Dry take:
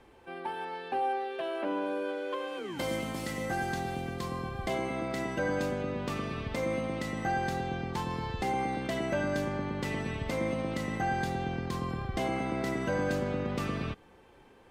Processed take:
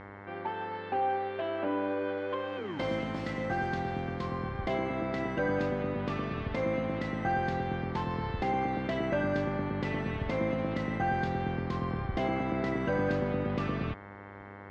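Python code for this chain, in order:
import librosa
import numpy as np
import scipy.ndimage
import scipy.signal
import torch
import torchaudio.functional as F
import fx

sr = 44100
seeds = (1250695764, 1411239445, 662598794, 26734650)

y = fx.dmg_buzz(x, sr, base_hz=100.0, harmonics=22, level_db=-48.0, tilt_db=-2, odd_only=False)
y = fx.air_absorb(y, sr, metres=200.0)
y = y * 10.0 ** (1.5 / 20.0)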